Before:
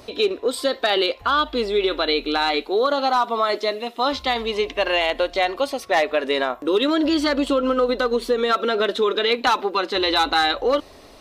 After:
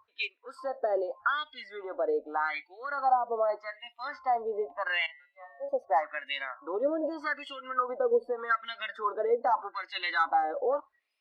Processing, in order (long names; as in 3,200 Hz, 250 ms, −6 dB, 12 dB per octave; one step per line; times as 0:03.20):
LFO wah 0.83 Hz 530–2,500 Hz, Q 4.3
0:05.06–0:05.69: tuned comb filter 140 Hz, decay 0.94 s, harmonics all, mix 90%
noise reduction from a noise print of the clip's start 23 dB